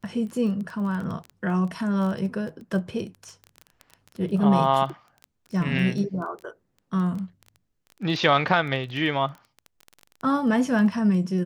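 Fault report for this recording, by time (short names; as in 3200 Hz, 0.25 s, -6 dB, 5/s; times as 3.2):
crackle 16/s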